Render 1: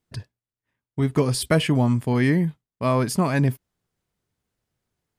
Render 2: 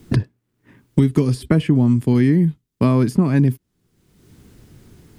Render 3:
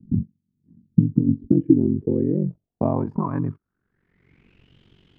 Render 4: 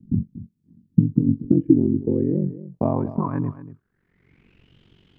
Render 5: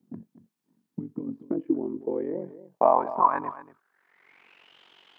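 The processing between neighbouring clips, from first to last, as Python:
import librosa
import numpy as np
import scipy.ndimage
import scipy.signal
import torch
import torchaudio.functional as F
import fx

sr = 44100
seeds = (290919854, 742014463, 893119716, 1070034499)

y1 = fx.low_shelf_res(x, sr, hz=450.0, db=8.5, q=1.5)
y1 = fx.band_squash(y1, sr, depth_pct=100)
y1 = y1 * 10.0 ** (-4.0 / 20.0)
y2 = fx.rider(y1, sr, range_db=10, speed_s=0.5)
y2 = fx.filter_sweep_lowpass(y2, sr, from_hz=200.0, to_hz=3100.0, start_s=1.07, end_s=4.77, q=7.3)
y2 = y2 * np.sin(2.0 * np.pi * 23.0 * np.arange(len(y2)) / sr)
y2 = y2 * 10.0 ** (-6.0 / 20.0)
y3 = y2 + 10.0 ** (-15.0 / 20.0) * np.pad(y2, (int(235 * sr / 1000.0), 0))[:len(y2)]
y4 = fx.highpass_res(y3, sr, hz=830.0, q=1.8)
y4 = y4 * 10.0 ** (6.0 / 20.0)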